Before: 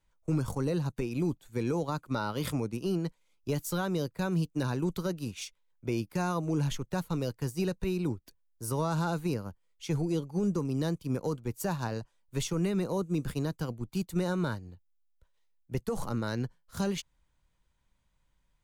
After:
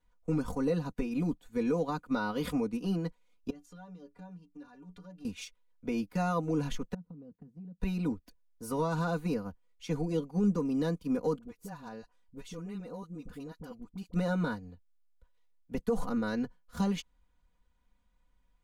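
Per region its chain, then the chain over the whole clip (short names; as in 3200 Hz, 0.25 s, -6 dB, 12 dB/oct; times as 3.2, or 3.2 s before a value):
3.5–5.25 compressor 20:1, threshold -40 dBFS + LPF 7700 Hz + metallic resonator 86 Hz, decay 0.2 s, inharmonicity 0.03
6.94–7.8 band-pass 170 Hz, Q 1.9 + compressor 12:1, threshold -43 dBFS
11.38–14.14 compressor 2:1, threshold -48 dBFS + dispersion highs, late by 47 ms, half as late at 670 Hz
whole clip: high shelf 3500 Hz -9 dB; comb 4.1 ms, depth 90%; gain -1.5 dB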